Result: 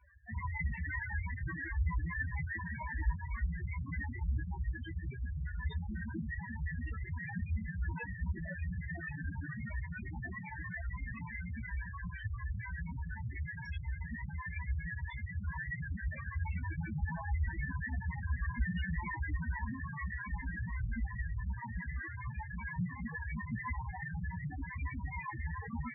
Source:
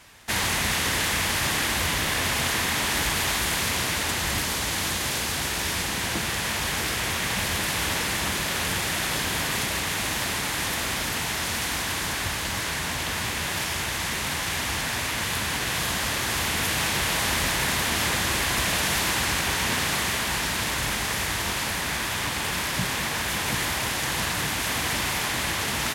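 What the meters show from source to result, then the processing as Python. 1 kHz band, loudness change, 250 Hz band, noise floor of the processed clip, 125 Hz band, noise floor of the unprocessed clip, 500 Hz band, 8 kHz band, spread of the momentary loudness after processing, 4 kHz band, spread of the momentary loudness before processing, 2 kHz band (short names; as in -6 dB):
-18.0 dB, -15.0 dB, -10.0 dB, -45 dBFS, -3.5 dB, -29 dBFS, -26.5 dB, under -40 dB, 5 LU, -39.0 dB, 3 LU, -15.5 dB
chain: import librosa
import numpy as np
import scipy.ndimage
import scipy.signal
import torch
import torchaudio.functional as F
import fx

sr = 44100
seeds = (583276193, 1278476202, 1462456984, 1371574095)

y = fx.spec_topn(x, sr, count=2)
y = fx.chorus_voices(y, sr, voices=6, hz=0.11, base_ms=15, depth_ms=3.2, mix_pct=45)
y = F.gain(torch.from_numpy(y), 4.5).numpy()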